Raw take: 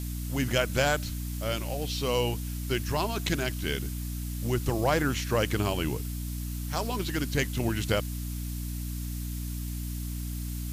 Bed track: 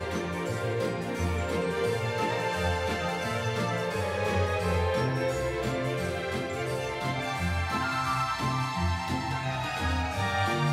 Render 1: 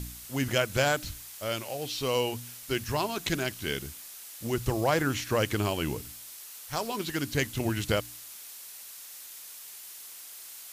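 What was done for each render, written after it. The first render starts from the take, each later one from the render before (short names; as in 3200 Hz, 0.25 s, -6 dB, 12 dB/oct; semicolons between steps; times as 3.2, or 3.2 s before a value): de-hum 60 Hz, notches 5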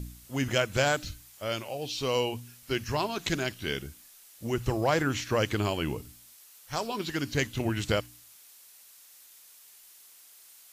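noise print and reduce 9 dB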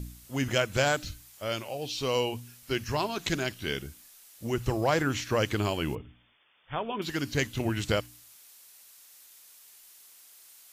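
5.95–7.02 brick-wall FIR low-pass 3600 Hz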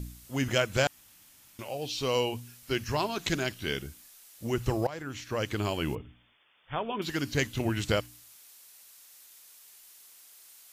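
0.87–1.59 room tone; 4.87–5.88 fade in, from -18 dB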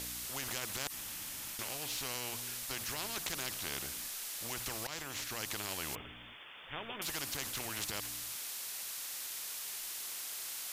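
limiter -20 dBFS, peak gain reduction 8.5 dB; spectral compressor 4:1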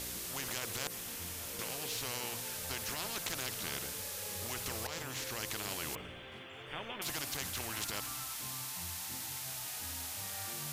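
add bed track -21 dB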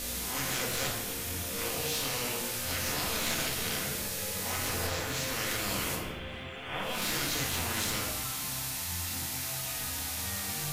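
spectral swells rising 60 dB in 0.64 s; shoebox room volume 400 m³, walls mixed, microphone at 1.9 m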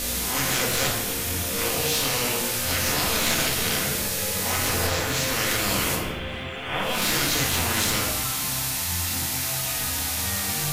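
gain +8.5 dB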